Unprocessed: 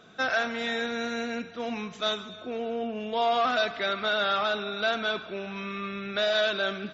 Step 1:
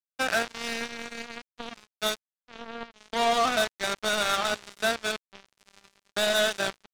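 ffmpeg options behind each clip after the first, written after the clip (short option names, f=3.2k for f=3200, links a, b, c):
-af "acrusher=bits=3:mix=0:aa=0.5"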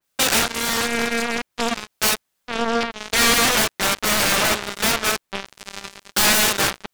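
-af "aeval=exprs='0.15*sin(PI/2*3.98*val(0)/0.15)':c=same,adynamicequalizer=threshold=0.0112:dfrequency=3000:dqfactor=0.7:tfrequency=3000:tqfactor=0.7:attack=5:release=100:ratio=0.375:range=2.5:mode=cutabove:tftype=highshelf,volume=7dB"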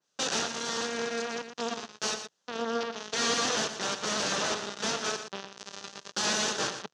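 -af "alimiter=limit=-20.5dB:level=0:latency=1:release=177,highpass=150,equalizer=f=160:t=q:w=4:g=3,equalizer=f=450:t=q:w=4:g=4,equalizer=f=2.2k:t=q:w=4:g=-9,equalizer=f=6.2k:t=q:w=4:g=6,lowpass=f=6.5k:w=0.5412,lowpass=f=6.5k:w=1.3066,aecho=1:1:118:0.335"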